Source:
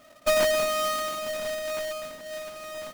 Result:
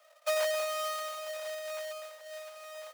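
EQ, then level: steep high-pass 490 Hz 96 dB/oct; -7.5 dB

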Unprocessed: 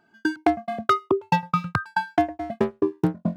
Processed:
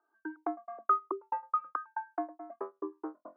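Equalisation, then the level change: Chebyshev high-pass 300 Hz, order 5; ladder low-pass 1300 Hz, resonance 70%; air absorption 270 m; -4.0 dB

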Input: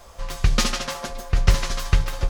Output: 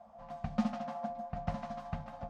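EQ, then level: double band-pass 390 Hz, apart 1.7 oct; +1.0 dB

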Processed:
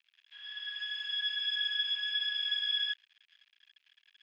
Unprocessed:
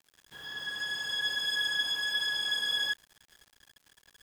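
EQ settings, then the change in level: resonant high-pass 2600 Hz, resonance Q 3; air absorption 260 m; high shelf 5700 Hz -4 dB; 0.0 dB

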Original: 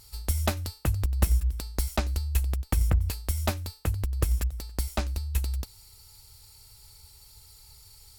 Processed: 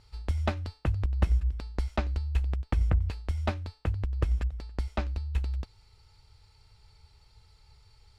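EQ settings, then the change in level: LPF 2900 Hz 12 dB/oct; -1.5 dB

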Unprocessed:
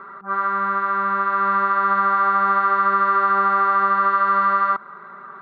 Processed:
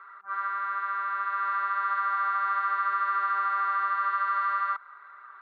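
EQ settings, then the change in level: HPF 1500 Hz 12 dB/oct; air absorption 110 m; -3.5 dB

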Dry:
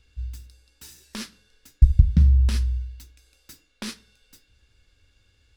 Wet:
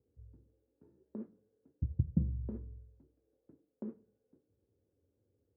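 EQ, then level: HPF 95 Hz 24 dB/oct; ladder low-pass 530 Hz, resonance 35%; low shelf 350 Hz -9 dB; +6.0 dB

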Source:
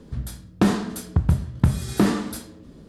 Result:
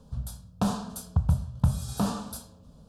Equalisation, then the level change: fixed phaser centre 830 Hz, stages 4; -3.0 dB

